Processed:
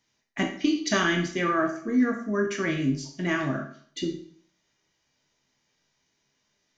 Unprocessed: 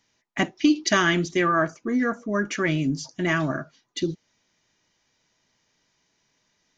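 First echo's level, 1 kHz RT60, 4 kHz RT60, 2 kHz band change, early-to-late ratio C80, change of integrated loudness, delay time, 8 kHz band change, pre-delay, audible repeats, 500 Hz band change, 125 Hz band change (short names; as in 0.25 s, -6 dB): none, 0.55 s, 0.50 s, -3.5 dB, 12.0 dB, -2.5 dB, none, n/a, 12 ms, none, -2.5 dB, -3.5 dB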